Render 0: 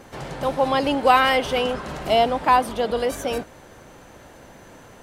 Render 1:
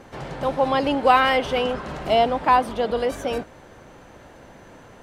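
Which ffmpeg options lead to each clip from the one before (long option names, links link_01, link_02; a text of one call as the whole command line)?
ffmpeg -i in.wav -af "lowpass=frequency=4000:poles=1" out.wav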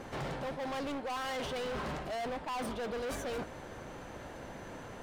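ffmpeg -i in.wav -af "areverse,acompressor=threshold=-27dB:ratio=12,areverse,volume=35dB,asoftclip=hard,volume=-35dB" out.wav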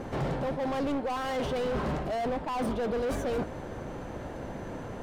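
ffmpeg -i in.wav -af "tiltshelf=frequency=970:gain=5,volume=4.5dB" out.wav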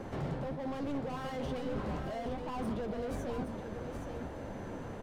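ffmpeg -i in.wav -filter_complex "[0:a]acrossover=split=300[link_01][link_02];[link_02]acompressor=threshold=-39dB:ratio=2[link_03];[link_01][link_03]amix=inputs=2:normalize=0,aecho=1:1:820:0.447,flanger=delay=9:depth=5.1:regen=-53:speed=1.1:shape=triangular" out.wav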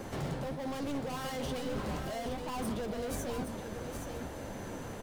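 ffmpeg -i in.wav -af "crystalizer=i=3.5:c=0" out.wav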